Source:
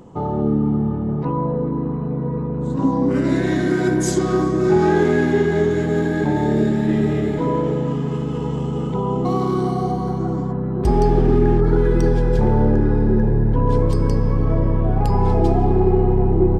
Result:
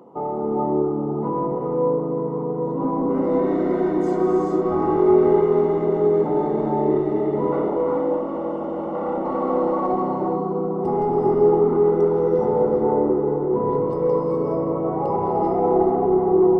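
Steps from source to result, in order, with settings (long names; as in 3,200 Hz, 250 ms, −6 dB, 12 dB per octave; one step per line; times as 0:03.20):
0:07.52–0:09.92: lower of the sound and its delayed copy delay 3.6 ms
high-pass filter 360 Hz 12 dB per octave
soft clipping −17.5 dBFS, distortion −15 dB
Savitzky-Golay smoothing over 65 samples
reverb whose tail is shaped and stops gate 460 ms rising, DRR −0.5 dB
level +1.5 dB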